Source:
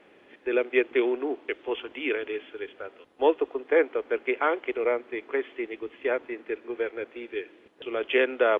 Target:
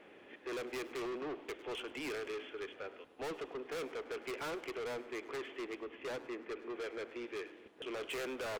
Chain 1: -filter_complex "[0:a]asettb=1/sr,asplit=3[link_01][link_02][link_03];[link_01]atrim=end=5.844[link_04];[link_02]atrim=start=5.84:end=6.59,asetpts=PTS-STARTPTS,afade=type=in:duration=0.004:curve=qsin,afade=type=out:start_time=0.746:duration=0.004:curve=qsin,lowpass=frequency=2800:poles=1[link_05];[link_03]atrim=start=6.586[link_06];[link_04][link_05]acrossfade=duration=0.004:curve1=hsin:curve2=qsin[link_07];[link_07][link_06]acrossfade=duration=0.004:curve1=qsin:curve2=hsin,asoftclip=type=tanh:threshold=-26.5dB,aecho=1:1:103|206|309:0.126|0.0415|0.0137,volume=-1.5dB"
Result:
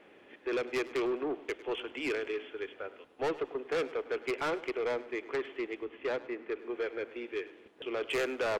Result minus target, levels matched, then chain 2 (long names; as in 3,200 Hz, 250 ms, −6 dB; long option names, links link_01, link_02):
soft clipping: distortion −5 dB
-filter_complex "[0:a]asettb=1/sr,asplit=3[link_01][link_02][link_03];[link_01]atrim=end=5.844[link_04];[link_02]atrim=start=5.84:end=6.59,asetpts=PTS-STARTPTS,afade=type=in:duration=0.004:curve=qsin,afade=type=out:start_time=0.746:duration=0.004:curve=qsin,lowpass=frequency=2800:poles=1[link_05];[link_03]atrim=start=6.586[link_06];[link_04][link_05]acrossfade=duration=0.004:curve1=hsin:curve2=qsin[link_07];[link_07][link_06]acrossfade=duration=0.004:curve1=qsin:curve2=hsin,asoftclip=type=tanh:threshold=-37dB,aecho=1:1:103|206|309:0.126|0.0415|0.0137,volume=-1.5dB"